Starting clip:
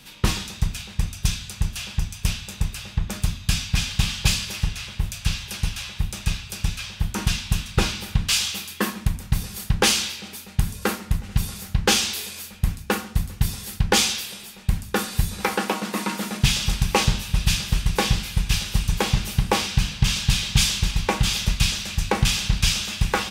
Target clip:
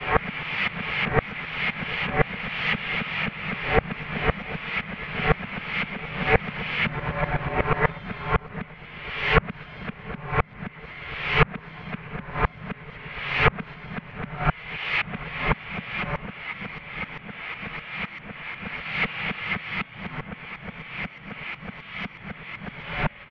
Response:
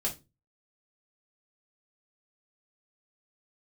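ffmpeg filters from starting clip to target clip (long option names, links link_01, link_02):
-filter_complex "[0:a]areverse,highpass=frequency=210:width_type=q:width=0.5412,highpass=frequency=210:width_type=q:width=1.307,lowpass=frequency=2600:width_type=q:width=0.5176,lowpass=frequency=2600:width_type=q:width=0.7071,lowpass=frequency=2600:width_type=q:width=1.932,afreqshift=-360,asplit=2[link_01][link_02];[link_02]adelay=736,lowpass=frequency=1500:poles=1,volume=-18dB,asplit=2[link_03][link_04];[link_04]adelay=736,lowpass=frequency=1500:poles=1,volume=0.54,asplit=2[link_05][link_06];[link_06]adelay=736,lowpass=frequency=1500:poles=1,volume=0.54,asplit=2[link_07][link_08];[link_08]adelay=736,lowpass=frequency=1500:poles=1,volume=0.54,asplit=2[link_09][link_10];[link_10]adelay=736,lowpass=frequency=1500:poles=1,volume=0.54[link_11];[link_03][link_05][link_07][link_09][link_11]amix=inputs=5:normalize=0[link_12];[link_01][link_12]amix=inputs=2:normalize=0,crystalizer=i=3.5:c=0,volume=2dB"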